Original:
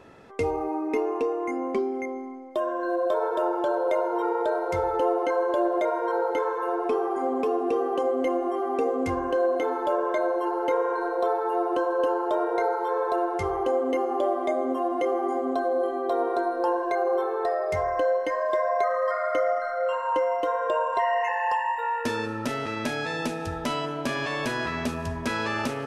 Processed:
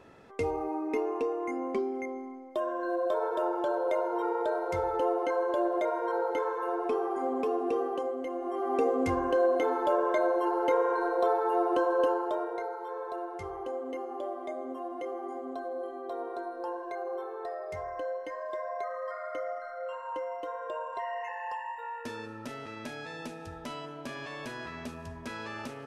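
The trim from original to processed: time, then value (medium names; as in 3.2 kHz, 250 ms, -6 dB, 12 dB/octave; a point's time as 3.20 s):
7.81 s -4.5 dB
8.28 s -11 dB
8.75 s -1.5 dB
12.03 s -1.5 dB
12.67 s -11.5 dB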